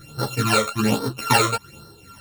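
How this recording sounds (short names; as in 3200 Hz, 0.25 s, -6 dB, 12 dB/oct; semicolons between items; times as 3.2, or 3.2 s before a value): a buzz of ramps at a fixed pitch in blocks of 32 samples; phasing stages 12, 1.2 Hz, lowest notch 270–2500 Hz; tremolo triangle 2.4 Hz, depth 55%; a shimmering, thickened sound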